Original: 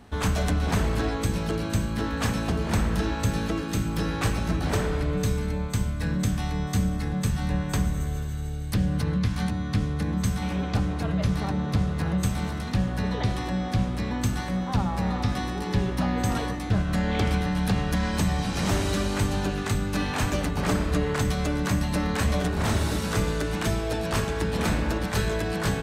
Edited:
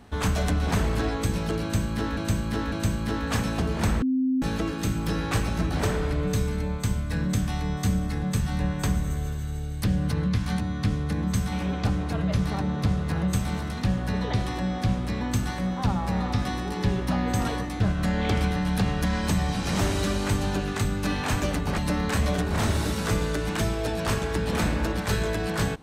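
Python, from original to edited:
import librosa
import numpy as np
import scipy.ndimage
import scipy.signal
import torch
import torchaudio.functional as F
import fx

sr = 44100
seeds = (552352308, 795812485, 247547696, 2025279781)

y = fx.edit(x, sr, fx.repeat(start_s=1.62, length_s=0.55, count=3),
    fx.bleep(start_s=2.92, length_s=0.4, hz=260.0, db=-20.5),
    fx.cut(start_s=20.68, length_s=1.16), tone=tone)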